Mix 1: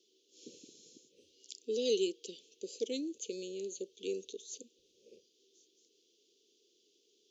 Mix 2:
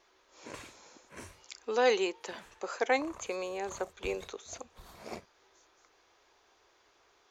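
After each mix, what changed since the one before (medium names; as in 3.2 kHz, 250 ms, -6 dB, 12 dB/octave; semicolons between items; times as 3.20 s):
background: remove vowel filter e; master: remove Chebyshev band-stop 450–3000 Hz, order 4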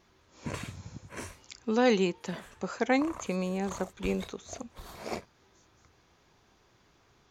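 speech: remove high-pass 370 Hz 24 dB/octave; background +6.5 dB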